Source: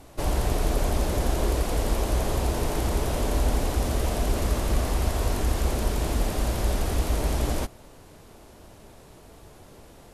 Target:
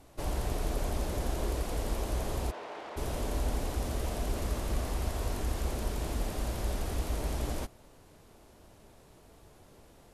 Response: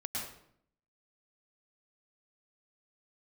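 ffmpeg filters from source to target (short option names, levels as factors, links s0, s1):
-filter_complex "[0:a]asplit=3[s0][s1][s2];[s0]afade=t=out:st=2.5:d=0.02[s3];[s1]highpass=570,lowpass=2800,afade=t=in:st=2.5:d=0.02,afade=t=out:st=2.96:d=0.02[s4];[s2]afade=t=in:st=2.96:d=0.02[s5];[s3][s4][s5]amix=inputs=3:normalize=0,volume=0.398"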